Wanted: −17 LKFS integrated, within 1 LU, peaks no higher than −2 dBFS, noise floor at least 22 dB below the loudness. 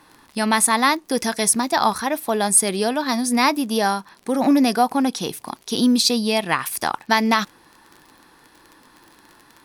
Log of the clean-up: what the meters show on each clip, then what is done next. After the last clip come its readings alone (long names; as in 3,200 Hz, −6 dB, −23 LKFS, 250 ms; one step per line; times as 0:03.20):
crackle rate 31 per second; integrated loudness −19.5 LKFS; sample peak −3.5 dBFS; target loudness −17.0 LKFS
→ click removal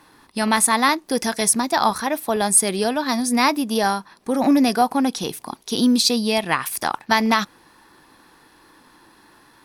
crackle rate 1.0 per second; integrated loudness −19.5 LKFS; sample peak −3.5 dBFS; target loudness −17.0 LKFS
→ level +2.5 dB
brickwall limiter −2 dBFS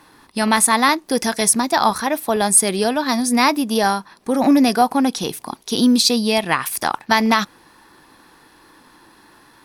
integrated loudness −17.0 LKFS; sample peak −2.0 dBFS; background noise floor −51 dBFS